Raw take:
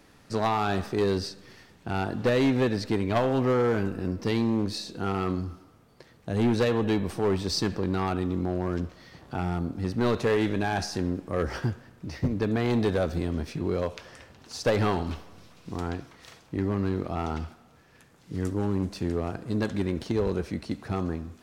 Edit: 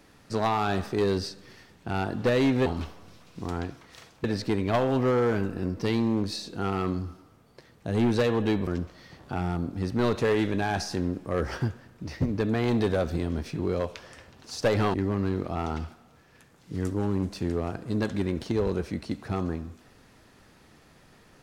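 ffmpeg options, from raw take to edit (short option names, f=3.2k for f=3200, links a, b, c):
-filter_complex "[0:a]asplit=5[a][b][c][d][e];[a]atrim=end=2.662[f];[b]atrim=start=14.958:end=16.542[g];[c]atrim=start=2.658:end=7.092[h];[d]atrim=start=8.688:end=14.962[i];[e]atrim=start=16.538[j];[f][g]acrossfade=d=0.004:c1=hsin:c2=hsin[k];[k][h]acrossfade=d=0.004:c1=hsin:c2=hsin[l];[l][i]acrossfade=d=0.004:c1=hsin:c2=hsin[m];[m][j]acrossfade=d=0.004:c1=hsin:c2=hsin"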